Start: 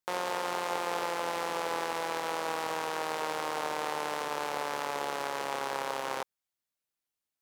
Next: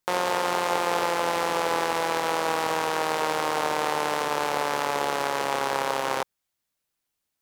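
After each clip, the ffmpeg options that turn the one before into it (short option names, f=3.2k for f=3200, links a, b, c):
-af "lowshelf=f=160:g=4.5,volume=7.5dB"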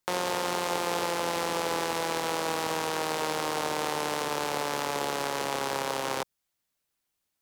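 -filter_complex "[0:a]acrossover=split=390|3000[a][b][c];[b]acompressor=threshold=-39dB:ratio=1.5[d];[a][d][c]amix=inputs=3:normalize=0"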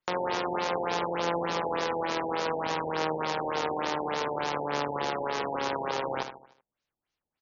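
-af "aecho=1:1:76|152|228|304|380:0.355|0.163|0.0751|0.0345|0.0159,afftfilt=real='re*lt(b*sr/1024,910*pow(7100/910,0.5+0.5*sin(2*PI*3.4*pts/sr)))':imag='im*lt(b*sr/1024,910*pow(7100/910,0.5+0.5*sin(2*PI*3.4*pts/sr)))':win_size=1024:overlap=0.75"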